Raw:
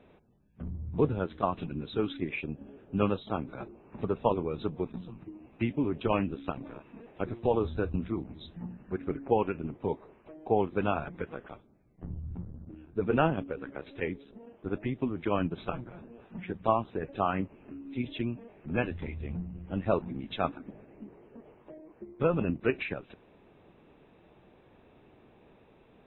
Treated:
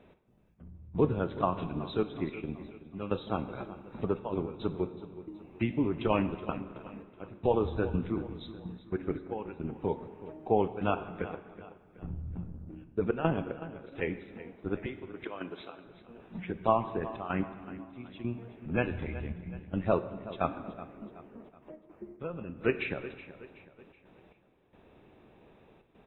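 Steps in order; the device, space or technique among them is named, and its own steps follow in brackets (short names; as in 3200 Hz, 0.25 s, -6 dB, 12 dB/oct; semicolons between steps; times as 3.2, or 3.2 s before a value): 14.86–15.86 HPF 420 Hz 12 dB/oct; trance gate with a delay (step gate "x.xx...xxxxxxxx." 111 bpm -12 dB; feedback echo 0.374 s, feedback 44%, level -15.5 dB); plate-style reverb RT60 1.5 s, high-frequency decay 0.85×, DRR 11 dB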